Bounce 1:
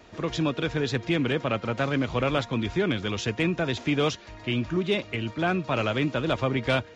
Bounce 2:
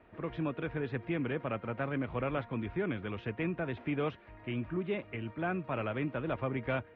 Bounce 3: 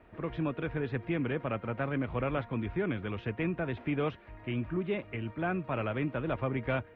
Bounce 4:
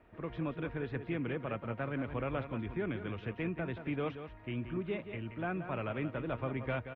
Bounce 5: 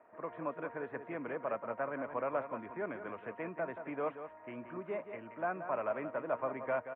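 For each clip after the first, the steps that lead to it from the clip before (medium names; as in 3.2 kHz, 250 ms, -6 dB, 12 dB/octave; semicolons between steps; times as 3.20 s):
low-pass 2.4 kHz 24 dB/octave; trim -8.5 dB
bass shelf 73 Hz +6.5 dB; trim +1.5 dB
delay 178 ms -10 dB; trim -4.5 dB
cabinet simulation 340–2000 Hz, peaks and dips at 350 Hz -4 dB, 630 Hz +7 dB, 1 kHz +7 dB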